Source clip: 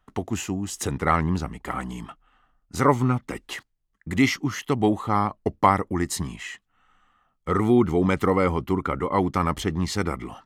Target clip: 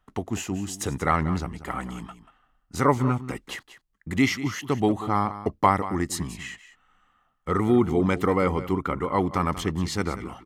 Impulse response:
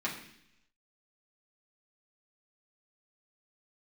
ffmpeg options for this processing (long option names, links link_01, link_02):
-af "aecho=1:1:187:0.2,volume=-1.5dB"